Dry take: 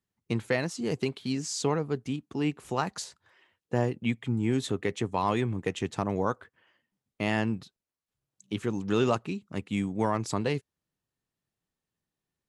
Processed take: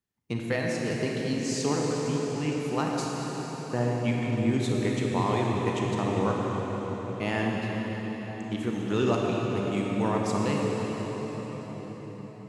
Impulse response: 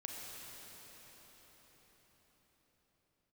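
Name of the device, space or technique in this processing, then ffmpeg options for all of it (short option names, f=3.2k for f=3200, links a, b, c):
cathedral: -filter_complex "[1:a]atrim=start_sample=2205[a];[0:a][a]afir=irnorm=-1:irlink=0,volume=3dB"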